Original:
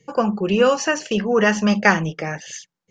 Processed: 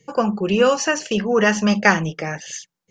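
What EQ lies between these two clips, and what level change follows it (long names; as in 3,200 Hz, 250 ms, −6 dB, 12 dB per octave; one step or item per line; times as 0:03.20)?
high-shelf EQ 5,200 Hz +4.5 dB
0.0 dB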